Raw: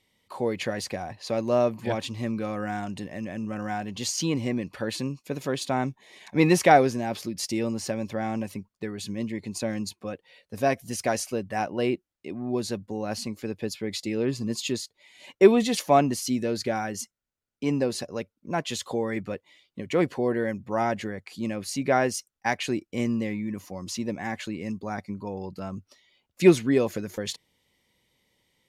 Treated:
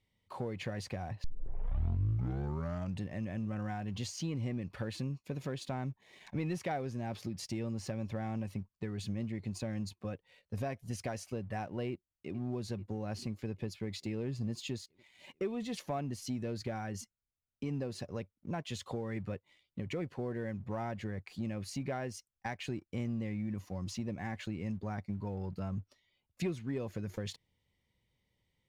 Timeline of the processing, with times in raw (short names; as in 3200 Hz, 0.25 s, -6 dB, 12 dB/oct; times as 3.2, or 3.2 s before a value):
1.24 tape start 1.78 s
11.9–12.35 echo throw 0.44 s, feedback 75%, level -17.5 dB
whole clip: compressor 3:1, threshold -32 dBFS; EQ curve 100 Hz 0 dB, 280 Hz -11 dB, 2600 Hz -12 dB, 13000 Hz -19 dB; sample leveller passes 1; gain +2 dB